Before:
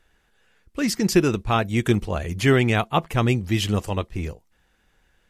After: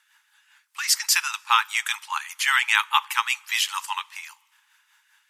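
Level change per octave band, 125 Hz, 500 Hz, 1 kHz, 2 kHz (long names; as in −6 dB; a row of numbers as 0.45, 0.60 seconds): below −40 dB, below −40 dB, +2.5 dB, +5.5 dB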